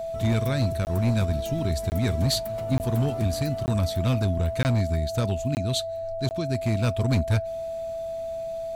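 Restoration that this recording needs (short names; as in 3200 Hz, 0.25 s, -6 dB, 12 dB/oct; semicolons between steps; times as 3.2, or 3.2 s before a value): clip repair -17 dBFS; notch 660 Hz, Q 30; interpolate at 0.85/1.9/2.78/3.66/4.63/5.55/6.29, 19 ms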